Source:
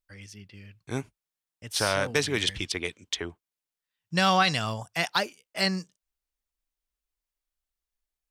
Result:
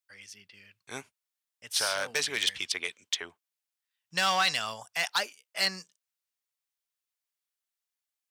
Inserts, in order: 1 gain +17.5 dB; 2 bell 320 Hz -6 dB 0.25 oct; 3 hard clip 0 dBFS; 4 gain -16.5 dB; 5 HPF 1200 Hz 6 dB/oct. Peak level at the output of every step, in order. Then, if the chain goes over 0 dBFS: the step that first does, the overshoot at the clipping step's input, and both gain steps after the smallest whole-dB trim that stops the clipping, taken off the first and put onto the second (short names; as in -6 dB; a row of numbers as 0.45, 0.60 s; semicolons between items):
+7.5, +7.5, 0.0, -16.5, -12.5 dBFS; step 1, 7.5 dB; step 1 +9.5 dB, step 4 -8.5 dB